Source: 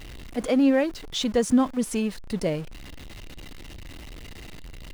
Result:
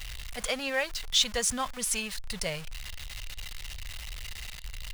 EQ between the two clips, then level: amplifier tone stack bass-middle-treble 10-0-10; +7.5 dB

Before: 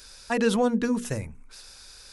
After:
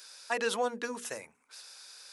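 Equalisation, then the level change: high-pass 580 Hz 12 dB/octave; -2.5 dB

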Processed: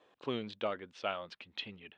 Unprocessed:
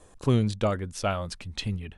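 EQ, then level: high-pass 320 Hz 12 dB/octave; four-pole ladder low-pass 3.9 kHz, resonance 40%; 0.0 dB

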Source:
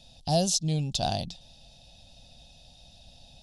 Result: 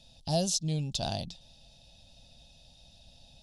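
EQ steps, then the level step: band-stop 740 Hz, Q 12; -3.5 dB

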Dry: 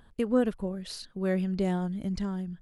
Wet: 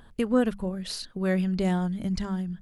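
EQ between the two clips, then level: hum notches 50/100/150/200 Hz; dynamic bell 400 Hz, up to -5 dB, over -41 dBFS, Q 0.81; +5.5 dB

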